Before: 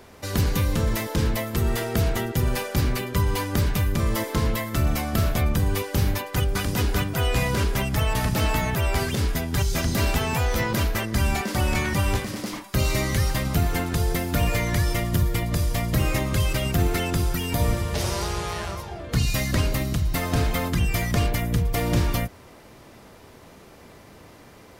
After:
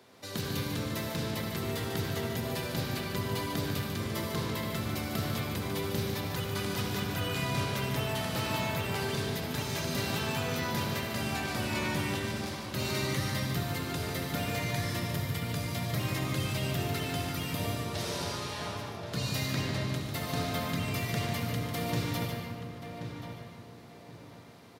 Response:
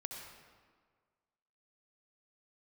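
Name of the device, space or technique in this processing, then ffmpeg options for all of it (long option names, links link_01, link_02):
PA in a hall: -filter_complex "[0:a]asettb=1/sr,asplit=3[link_01][link_02][link_03];[link_01]atrim=end=19.464[link_04];[link_02]atrim=start=19.46:end=19.93,asetpts=PTS-STARTPTS,afade=type=in:duration=0.004:curve=qsin,afade=type=out:start_time=0.466:duration=0.004:curve=qsin,lowpass=7300[link_05];[link_03]atrim=start=19.926[link_06];[link_04][link_05]acrossfade=duration=0.004:curve1=hsin:curve2=qsin[link_07];[link_07][link_06]acrossfade=duration=0.004:curve1=qsin:curve2=hsin,highpass=frequency=110:width=0.5412,highpass=frequency=110:width=1.3066,equalizer=frequency=3900:width_type=o:width=0.66:gain=6,aecho=1:1:147:0.422[link_08];[1:a]atrim=start_sample=2205[link_09];[link_08][link_09]afir=irnorm=-1:irlink=0,asplit=2[link_10][link_11];[link_11]adelay=1080,lowpass=frequency=2400:poles=1,volume=-8dB,asplit=2[link_12][link_13];[link_13]adelay=1080,lowpass=frequency=2400:poles=1,volume=0.3,asplit=2[link_14][link_15];[link_15]adelay=1080,lowpass=frequency=2400:poles=1,volume=0.3,asplit=2[link_16][link_17];[link_17]adelay=1080,lowpass=frequency=2400:poles=1,volume=0.3[link_18];[link_10][link_12][link_14][link_16][link_18]amix=inputs=5:normalize=0,volume=-6.5dB"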